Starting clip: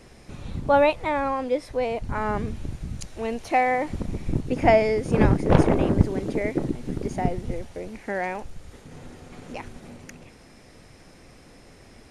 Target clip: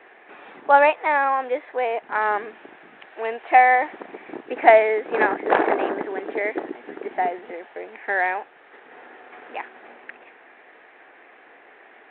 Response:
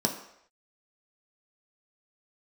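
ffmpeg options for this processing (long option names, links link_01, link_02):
-af "highpass=frequency=400:width=0.5412,highpass=frequency=400:width=1.3066,equalizer=frequency=540:width_type=q:width=4:gain=-6,equalizer=frequency=770:width_type=q:width=4:gain=4,equalizer=frequency=1700:width_type=q:width=4:gain=8,lowpass=frequency=2800:width=0.5412,lowpass=frequency=2800:width=1.3066,volume=4.5dB" -ar 8000 -c:a adpcm_g726 -b:a 40k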